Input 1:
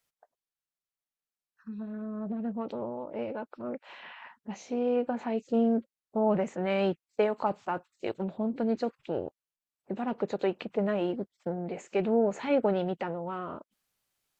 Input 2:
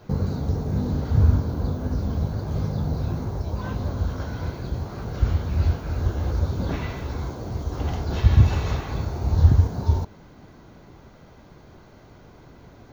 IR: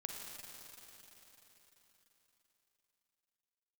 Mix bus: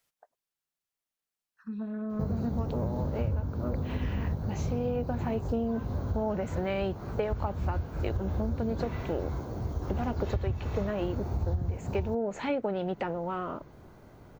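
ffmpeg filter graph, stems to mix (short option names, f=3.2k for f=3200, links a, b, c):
-filter_complex "[0:a]volume=2.5dB[a];[1:a]equalizer=f=4.3k:t=o:w=2:g=-7,adelay=2100,volume=-3.5dB[b];[a][b]amix=inputs=2:normalize=0,acompressor=threshold=-26dB:ratio=10"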